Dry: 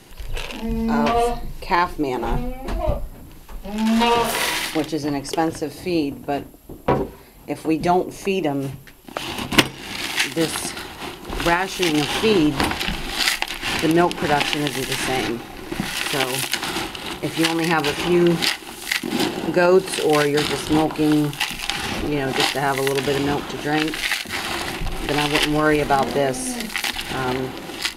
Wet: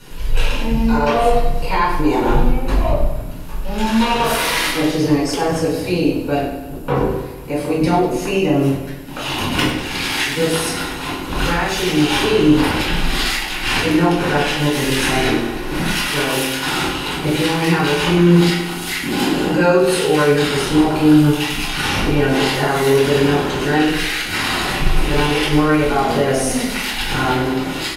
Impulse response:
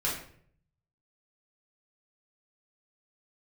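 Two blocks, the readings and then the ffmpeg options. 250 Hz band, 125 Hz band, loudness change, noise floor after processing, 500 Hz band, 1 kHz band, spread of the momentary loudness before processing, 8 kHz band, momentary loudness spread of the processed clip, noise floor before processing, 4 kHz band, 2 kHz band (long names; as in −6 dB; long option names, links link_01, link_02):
+5.5 dB, +8.5 dB, +4.0 dB, −26 dBFS, +4.0 dB, +3.0 dB, 11 LU, +2.5 dB, 8 LU, −40 dBFS, +2.5 dB, +3.5 dB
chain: -filter_complex "[0:a]alimiter=limit=-14dB:level=0:latency=1:release=91,aecho=1:1:98|196|294|392|490|588|686:0.282|0.163|0.0948|0.055|0.0319|0.0185|0.0107[link_01];[1:a]atrim=start_sample=2205[link_02];[link_01][link_02]afir=irnorm=-1:irlink=0"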